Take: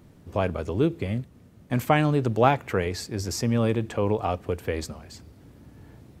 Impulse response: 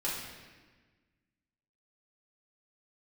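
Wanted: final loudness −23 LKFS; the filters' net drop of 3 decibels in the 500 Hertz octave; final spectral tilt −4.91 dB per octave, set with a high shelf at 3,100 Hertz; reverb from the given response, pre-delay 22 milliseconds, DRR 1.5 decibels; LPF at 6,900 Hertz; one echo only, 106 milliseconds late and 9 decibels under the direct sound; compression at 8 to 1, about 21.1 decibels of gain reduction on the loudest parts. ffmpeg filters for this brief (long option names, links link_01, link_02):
-filter_complex "[0:a]lowpass=6900,equalizer=frequency=500:width_type=o:gain=-4,highshelf=frequency=3100:gain=7,acompressor=threshold=-38dB:ratio=8,aecho=1:1:106:0.355,asplit=2[link_01][link_02];[1:a]atrim=start_sample=2205,adelay=22[link_03];[link_02][link_03]afir=irnorm=-1:irlink=0,volume=-7dB[link_04];[link_01][link_04]amix=inputs=2:normalize=0,volume=17.5dB"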